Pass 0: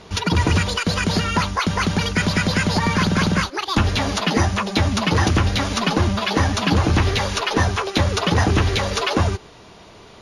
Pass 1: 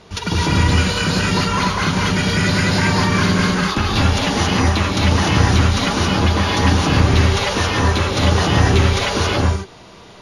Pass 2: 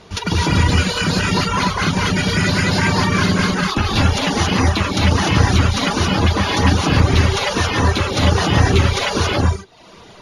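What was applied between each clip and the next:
non-linear reverb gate 0.3 s rising, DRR -4 dB; gain -2.5 dB
reverb removal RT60 0.64 s; gain +1.5 dB

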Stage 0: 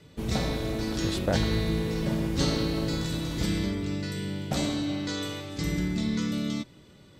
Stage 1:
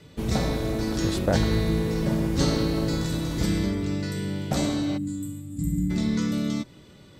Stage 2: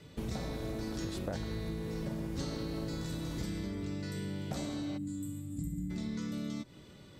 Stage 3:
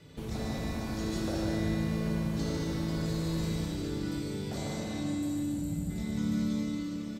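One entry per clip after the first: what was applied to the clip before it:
spectral gain 4.97–5.9, 320–6800 Hz -25 dB; dynamic EQ 3100 Hz, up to -5 dB, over -48 dBFS, Q 1.1; gain +3.5 dB
compressor 5:1, threshold -31 dBFS, peak gain reduction 13 dB; gain -4 dB
echo 0.147 s -5 dB; plate-style reverb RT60 3.9 s, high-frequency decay 0.95×, DRR -3.5 dB; gain -1.5 dB

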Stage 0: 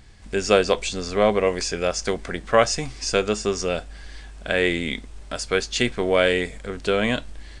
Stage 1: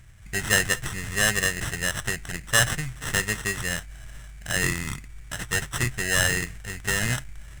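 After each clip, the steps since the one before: sample-rate reducer 2300 Hz, jitter 0%; graphic EQ 125/250/500/1000/2000/4000/8000 Hz +10/-9/-10/-8/+12/-4/+11 dB; gain -3 dB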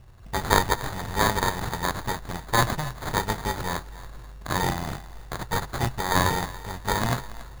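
sample-and-hold 16×; thinning echo 0.281 s, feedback 25%, level -16 dB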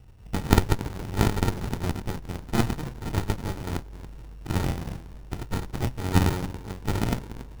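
running maximum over 65 samples

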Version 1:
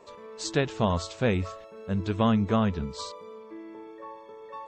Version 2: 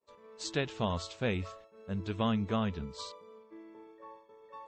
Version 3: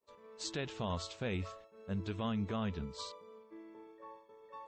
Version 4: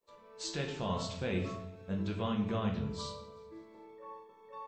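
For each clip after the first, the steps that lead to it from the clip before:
expander -41 dBFS; dynamic EQ 3100 Hz, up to +5 dB, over -46 dBFS, Q 1.1; gain -7.5 dB
limiter -26 dBFS, peak gain reduction 7 dB; gain -1.5 dB
feedback echo 0.186 s, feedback 56%, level -23.5 dB; shoebox room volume 150 m³, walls mixed, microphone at 0.82 m

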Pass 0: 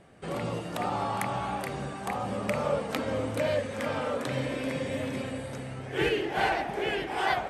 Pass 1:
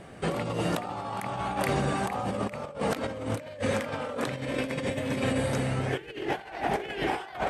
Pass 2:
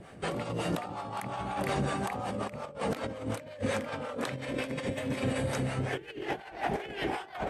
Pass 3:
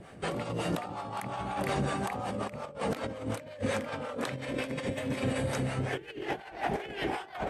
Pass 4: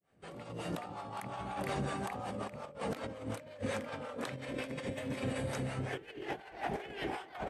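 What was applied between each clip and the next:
negative-ratio compressor -35 dBFS, ratio -0.5; gain +5 dB
harmonic tremolo 5.5 Hz, depth 70%, crossover 510 Hz
nothing audible
opening faded in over 0.85 s; speakerphone echo 0.22 s, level -20 dB; gain -5.5 dB

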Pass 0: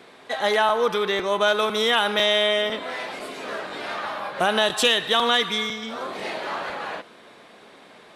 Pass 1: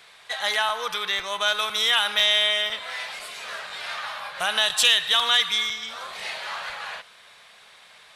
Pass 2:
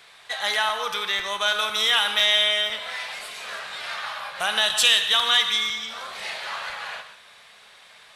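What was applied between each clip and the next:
passive tone stack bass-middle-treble 10-0-10; gain +5 dB
non-linear reverb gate 0.2 s flat, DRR 8 dB

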